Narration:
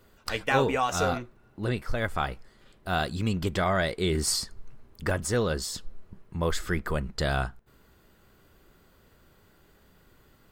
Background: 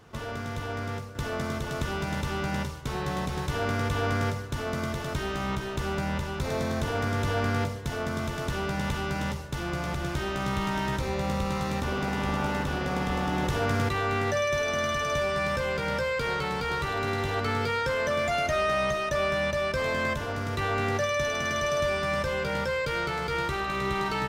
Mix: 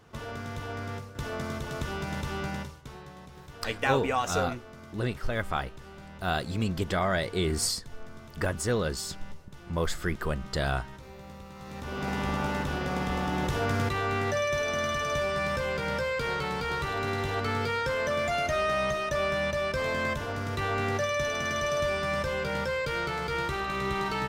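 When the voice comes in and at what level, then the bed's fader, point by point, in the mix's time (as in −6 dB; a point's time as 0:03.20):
3.35 s, −1.5 dB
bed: 0:02.46 −3 dB
0:03.14 −17 dB
0:11.53 −17 dB
0:12.09 −1.5 dB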